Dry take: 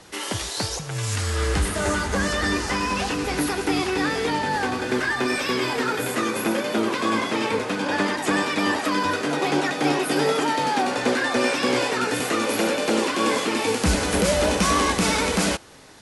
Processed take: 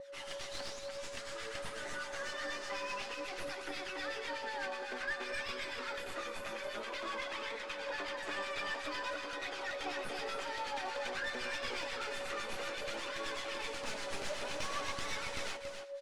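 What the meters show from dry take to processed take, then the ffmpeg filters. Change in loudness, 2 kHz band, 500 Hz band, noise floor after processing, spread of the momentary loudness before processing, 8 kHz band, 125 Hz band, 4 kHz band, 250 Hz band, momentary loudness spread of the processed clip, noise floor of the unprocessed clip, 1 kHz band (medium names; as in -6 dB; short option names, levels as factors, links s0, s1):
-17.0 dB, -14.0 dB, -17.0 dB, -45 dBFS, 4 LU, -19.5 dB, -28.5 dB, -14.5 dB, -27.5 dB, 4 LU, -31 dBFS, -17.5 dB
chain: -filter_complex "[0:a]highpass=f=230:w=0.5412,highpass=f=230:w=1.3066,aderivative,areverse,acompressor=mode=upward:threshold=0.00398:ratio=2.5,areverse,aeval=exprs='val(0)+0.00501*sin(2*PI*560*n/s)':c=same,flanger=delay=0.5:depth=4.7:regen=45:speed=0.53:shape=sinusoidal,acrossover=split=1200[s0][s1];[s0]aeval=exprs='val(0)*(1-0.7/2+0.7/2*cos(2*PI*8.1*n/s))':c=same[s2];[s1]aeval=exprs='val(0)*(1-0.7/2-0.7/2*cos(2*PI*8.1*n/s))':c=same[s3];[s2][s3]amix=inputs=2:normalize=0,asoftclip=type=tanh:threshold=0.0335,aeval=exprs='0.0335*(cos(1*acos(clip(val(0)/0.0335,-1,1)))-cos(1*PI/2))+0.0119*(cos(2*acos(clip(val(0)/0.0335,-1,1)))-cos(2*PI/2))+0.00335*(cos(5*acos(clip(val(0)/0.0335,-1,1)))-cos(5*PI/2))+0.000596*(cos(6*acos(clip(val(0)/0.0335,-1,1)))-cos(6*PI/2))+0.00075*(cos(8*acos(clip(val(0)/0.0335,-1,1)))-cos(8*PI/2))':c=same,adynamicsmooth=sensitivity=2.5:basefreq=2300,aecho=1:1:280:0.447,volume=1.88"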